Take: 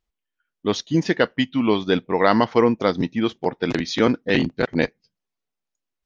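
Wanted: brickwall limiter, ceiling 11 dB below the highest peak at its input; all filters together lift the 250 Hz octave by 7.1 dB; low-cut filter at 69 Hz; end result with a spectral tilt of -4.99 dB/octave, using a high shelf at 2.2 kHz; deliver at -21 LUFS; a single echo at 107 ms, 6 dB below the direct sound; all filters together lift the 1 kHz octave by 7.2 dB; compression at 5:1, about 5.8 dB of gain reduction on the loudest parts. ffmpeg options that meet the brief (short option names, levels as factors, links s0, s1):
-af "highpass=69,equalizer=f=250:t=o:g=8,equalizer=f=1000:t=o:g=7,highshelf=f=2200:g=7,acompressor=threshold=0.224:ratio=5,alimiter=limit=0.251:level=0:latency=1,aecho=1:1:107:0.501,volume=1.19"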